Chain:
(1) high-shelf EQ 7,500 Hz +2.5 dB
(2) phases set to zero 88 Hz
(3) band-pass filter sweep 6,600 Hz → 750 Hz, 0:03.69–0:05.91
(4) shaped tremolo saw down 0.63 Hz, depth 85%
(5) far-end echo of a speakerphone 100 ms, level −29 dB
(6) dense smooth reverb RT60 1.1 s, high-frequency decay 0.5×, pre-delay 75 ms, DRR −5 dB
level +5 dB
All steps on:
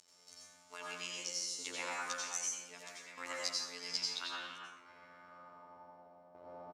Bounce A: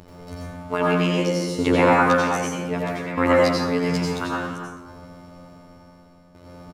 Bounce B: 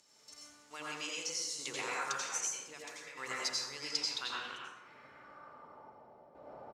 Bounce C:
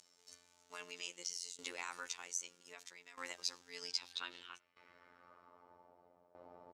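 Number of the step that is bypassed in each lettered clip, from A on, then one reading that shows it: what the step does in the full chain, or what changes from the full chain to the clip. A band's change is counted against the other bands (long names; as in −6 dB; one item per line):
3, 8 kHz band −24.5 dB
2, 125 Hz band +2.0 dB
6, change in momentary loudness spread +2 LU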